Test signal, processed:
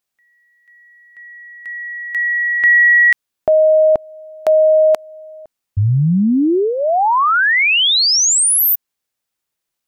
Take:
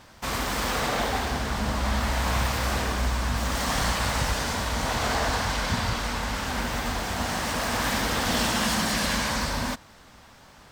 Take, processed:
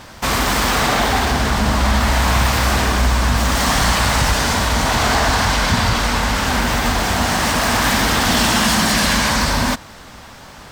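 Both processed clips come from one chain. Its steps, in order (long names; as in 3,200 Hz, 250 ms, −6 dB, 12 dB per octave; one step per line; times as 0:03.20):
dynamic equaliser 510 Hz, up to −7 dB, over −41 dBFS, Q 4.3
in parallel at +2 dB: brickwall limiter −22 dBFS
on the sum: level +5.5 dB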